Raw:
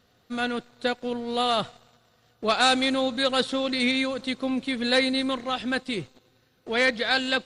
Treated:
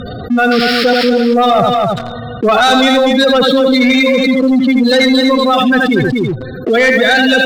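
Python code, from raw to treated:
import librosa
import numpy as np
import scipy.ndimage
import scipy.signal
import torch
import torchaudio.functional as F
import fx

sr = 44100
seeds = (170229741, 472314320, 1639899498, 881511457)

y = fx.spec_gate(x, sr, threshold_db=-10, keep='strong')
y = scipy.signal.sosfilt(scipy.signal.butter(2, 8700.0, 'lowpass', fs=sr, output='sos'), y)
y = y + 10.0 ** (-7.0 / 20.0) * np.pad(y, (int(81 * sr / 1000.0), 0))[:len(y)]
y = fx.spec_paint(y, sr, seeds[0], shape='noise', start_s=0.51, length_s=0.59, low_hz=1200.0, high_hz=5500.0, level_db=-40.0)
y = fx.leveller(y, sr, passes=2)
y = y + 10.0 ** (-9.0 / 20.0) * np.pad(y, (int(241 * sr / 1000.0), 0))[:len(y)]
y = fx.env_flatten(y, sr, amount_pct=70)
y = y * 10.0 ** (7.0 / 20.0)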